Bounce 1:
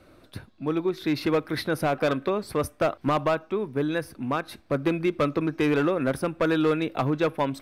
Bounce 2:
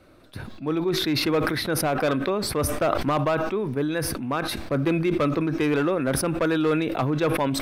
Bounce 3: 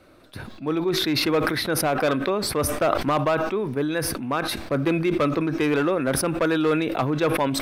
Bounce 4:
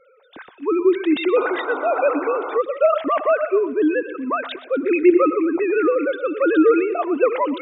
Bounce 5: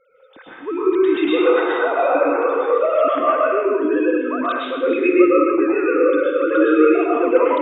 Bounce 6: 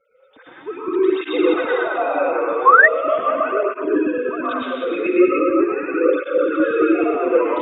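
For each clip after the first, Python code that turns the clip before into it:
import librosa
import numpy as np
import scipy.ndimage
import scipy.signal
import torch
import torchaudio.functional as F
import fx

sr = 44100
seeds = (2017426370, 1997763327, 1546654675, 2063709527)

y1 = fx.sustainer(x, sr, db_per_s=33.0)
y2 = fx.low_shelf(y1, sr, hz=210.0, db=-4.5)
y2 = F.gain(torch.from_numpy(y2), 2.0).numpy()
y3 = fx.sine_speech(y2, sr)
y3 = fx.echo_feedback(y3, sr, ms=122, feedback_pct=46, wet_db=-15.5)
y3 = fx.spec_paint(y3, sr, seeds[0], shape='noise', start_s=1.36, length_s=1.22, low_hz=260.0, high_hz=1500.0, level_db=-33.0)
y3 = F.gain(torch.from_numpy(y3), 4.0).numpy()
y4 = y3 + 10.0 ** (-12.0 / 20.0) * np.pad(y3, (int(286 * sr / 1000.0), 0))[:len(y3)]
y4 = fx.rev_plate(y4, sr, seeds[1], rt60_s=0.85, hf_ratio=0.9, predelay_ms=95, drr_db=-7.0)
y4 = F.gain(torch.from_numpy(y4), -5.5).numpy()
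y5 = fx.reverse_delay(y4, sr, ms=110, wet_db=-1.0)
y5 = fx.spec_paint(y5, sr, seeds[2], shape='rise', start_s=2.66, length_s=0.22, low_hz=1000.0, high_hz=2000.0, level_db=-5.0)
y5 = fx.flanger_cancel(y5, sr, hz=0.4, depth_ms=8.0)
y5 = F.gain(torch.from_numpy(y5), -1.5).numpy()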